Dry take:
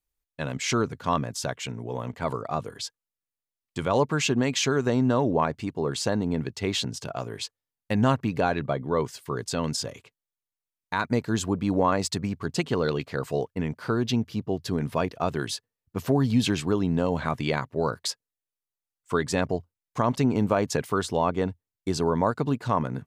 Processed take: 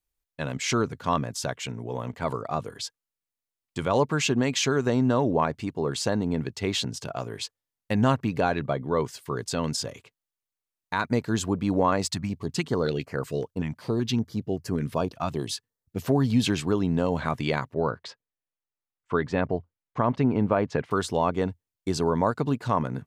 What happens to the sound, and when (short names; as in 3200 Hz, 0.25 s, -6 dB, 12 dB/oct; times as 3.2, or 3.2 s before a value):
12.11–16.02 stepped notch 5.3 Hz 440–3600 Hz
17.74–20.91 LPF 2500 Hz